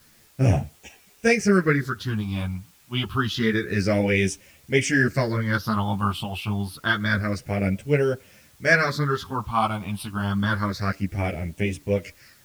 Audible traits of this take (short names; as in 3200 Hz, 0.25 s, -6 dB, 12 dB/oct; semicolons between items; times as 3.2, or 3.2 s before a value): phasing stages 6, 0.28 Hz, lowest notch 470–1200 Hz; a quantiser's noise floor 10-bit, dither triangular; a shimmering, thickened sound